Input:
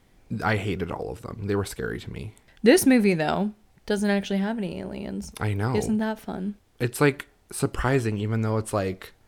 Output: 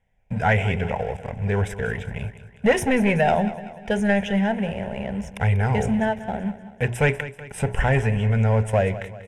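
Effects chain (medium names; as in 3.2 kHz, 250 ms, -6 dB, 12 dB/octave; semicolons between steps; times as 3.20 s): hum notches 60/120/180/240/300/360/420 Hz; waveshaping leveller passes 3; distance through air 83 m; static phaser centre 1.2 kHz, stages 6; feedback delay 191 ms, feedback 49%, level -14.5 dB; trim -2 dB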